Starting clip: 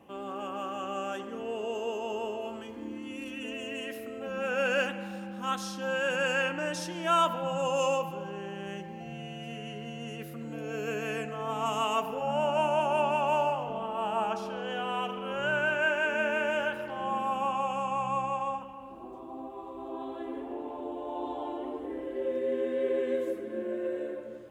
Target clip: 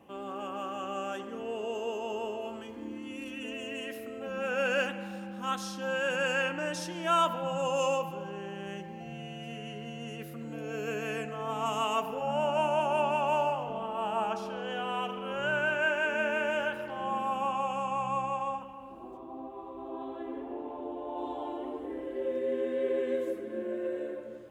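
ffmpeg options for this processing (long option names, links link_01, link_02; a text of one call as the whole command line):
ffmpeg -i in.wav -filter_complex "[0:a]asettb=1/sr,asplit=3[link_01][link_02][link_03];[link_01]atrim=end=19.174[link_04];[link_02]atrim=start=19.17:end=21.18,asetpts=PTS-STARTPTS,afade=type=in:duration=0.004:curve=qsin,afade=type=out:start_time=2.006:duration=0.004:curve=qsin,equalizer=frequency=9700:width=0.48:gain=-10[link_05];[link_03]atrim=start=21.176[link_06];[link_04][link_05]acrossfade=duration=0.004:curve1=hsin:curve2=qsin[link_07];[link_07][link_06]acrossfade=duration=0.004:curve1=qsin:curve2=hsin,volume=-1dB" out.wav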